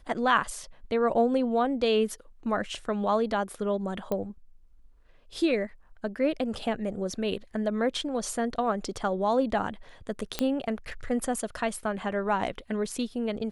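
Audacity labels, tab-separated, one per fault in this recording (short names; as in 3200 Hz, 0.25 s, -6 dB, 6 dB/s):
4.120000	4.120000	pop -17 dBFS
10.390000	10.390000	pop -11 dBFS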